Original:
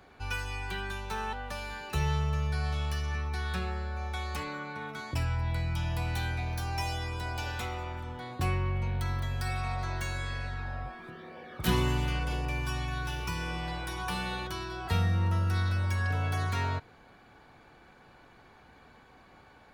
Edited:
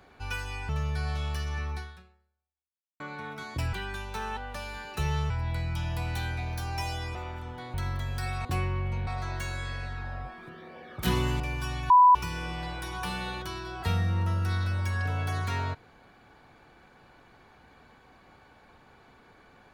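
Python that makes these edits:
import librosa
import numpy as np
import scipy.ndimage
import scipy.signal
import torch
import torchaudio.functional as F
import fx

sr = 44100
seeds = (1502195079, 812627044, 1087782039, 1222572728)

y = fx.edit(x, sr, fx.move(start_s=0.69, length_s=1.57, to_s=5.3),
    fx.fade_out_span(start_s=3.32, length_s=1.25, curve='exp'),
    fx.cut(start_s=7.15, length_s=0.61),
    fx.move(start_s=8.35, length_s=0.62, to_s=9.68),
    fx.cut(start_s=12.01, length_s=0.44),
    fx.bleep(start_s=12.95, length_s=0.25, hz=992.0, db=-13.0), tone=tone)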